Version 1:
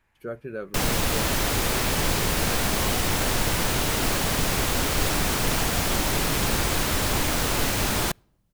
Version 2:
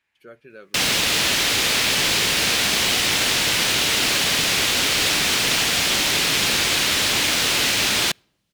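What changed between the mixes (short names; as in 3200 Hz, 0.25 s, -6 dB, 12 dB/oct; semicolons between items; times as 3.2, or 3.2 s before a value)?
speech -9.5 dB; master: add weighting filter D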